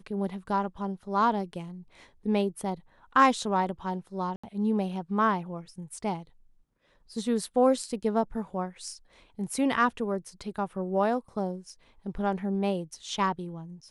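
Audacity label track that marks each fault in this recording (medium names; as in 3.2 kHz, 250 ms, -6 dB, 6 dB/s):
4.360000	4.430000	dropout 75 ms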